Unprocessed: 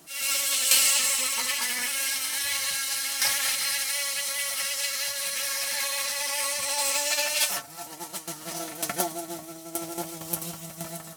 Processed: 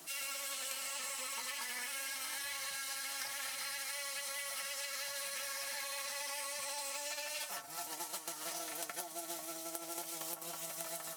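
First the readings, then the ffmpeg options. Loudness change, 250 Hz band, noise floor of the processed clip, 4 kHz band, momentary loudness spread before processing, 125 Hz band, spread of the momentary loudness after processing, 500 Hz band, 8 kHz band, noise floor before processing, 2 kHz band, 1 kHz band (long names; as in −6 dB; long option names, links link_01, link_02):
−14.5 dB, −14.5 dB, −48 dBFS, −14.5 dB, 13 LU, below −15 dB, 3 LU, −10.5 dB, −14.5 dB, −44 dBFS, −12.0 dB, −10.0 dB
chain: -filter_complex "[0:a]acrossover=split=330|1600[link_01][link_02][link_03];[link_01]acompressor=threshold=-55dB:ratio=4[link_04];[link_02]acompressor=threshold=-42dB:ratio=4[link_05];[link_03]acompressor=threshold=-39dB:ratio=4[link_06];[link_04][link_05][link_06]amix=inputs=3:normalize=0,lowshelf=frequency=310:gain=-11.5,acompressor=threshold=-39dB:ratio=6,volume=1dB"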